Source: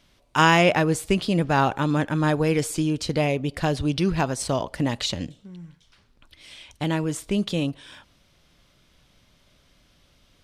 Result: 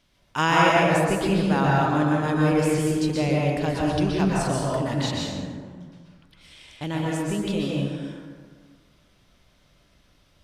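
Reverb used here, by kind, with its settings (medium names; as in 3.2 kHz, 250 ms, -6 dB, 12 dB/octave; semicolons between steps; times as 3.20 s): plate-style reverb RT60 1.7 s, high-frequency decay 0.45×, pre-delay 110 ms, DRR -4 dB; trim -5.5 dB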